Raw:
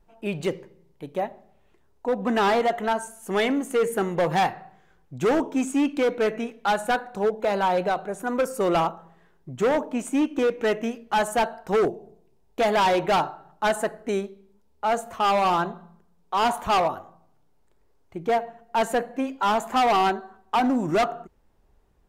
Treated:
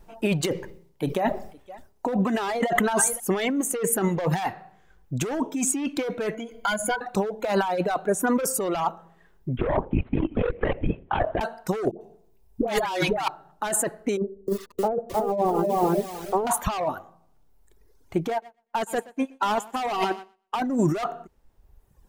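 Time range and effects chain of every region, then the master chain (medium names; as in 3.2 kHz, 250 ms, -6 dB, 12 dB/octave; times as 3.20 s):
0.50–3.20 s: delay 514 ms -22 dB + decay stretcher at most 74 dB/s
6.34–7.01 s: rippled EQ curve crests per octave 1.8, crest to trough 17 dB + compression 4:1, threshold -34 dBFS
9.57–11.41 s: distance through air 400 m + LPC vocoder at 8 kHz whisper + transformer saturation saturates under 150 Hz
11.91–13.28 s: hum notches 60/120/180/240/300/360/420/480/540 Hz + phase dispersion highs, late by 100 ms, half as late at 700 Hz
14.17–16.47 s: resonant low-pass 460 Hz, resonance Q 2.5 + bit-crushed delay 308 ms, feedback 35%, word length 8-bit, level -3 dB
18.30–20.62 s: thinning echo 121 ms, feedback 38%, high-pass 180 Hz, level -7 dB + upward expansion 2.5:1, over -39 dBFS
whole clip: reverb removal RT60 1.2 s; treble shelf 5.3 kHz +5 dB; compressor with a negative ratio -29 dBFS, ratio -1; trim +5 dB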